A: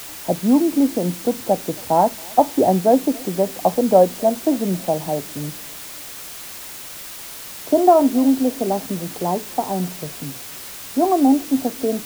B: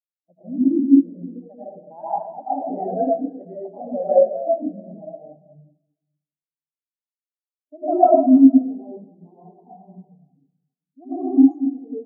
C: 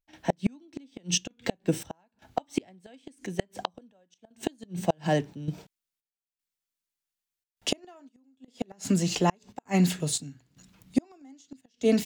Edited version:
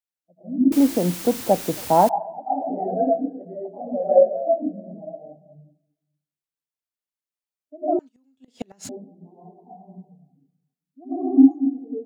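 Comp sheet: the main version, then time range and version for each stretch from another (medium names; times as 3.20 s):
B
0.72–2.09 s: from A
7.99–8.89 s: from C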